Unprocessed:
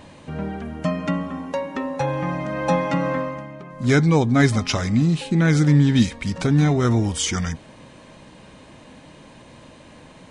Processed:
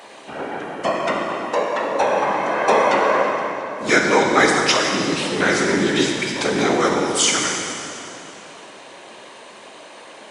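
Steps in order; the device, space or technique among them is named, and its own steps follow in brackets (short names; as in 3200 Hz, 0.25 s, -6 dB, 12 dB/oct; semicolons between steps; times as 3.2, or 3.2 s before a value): whispering ghost (whisperiser; HPF 520 Hz 12 dB/oct; reverb RT60 2.8 s, pre-delay 5 ms, DRR 0 dB); gain +6 dB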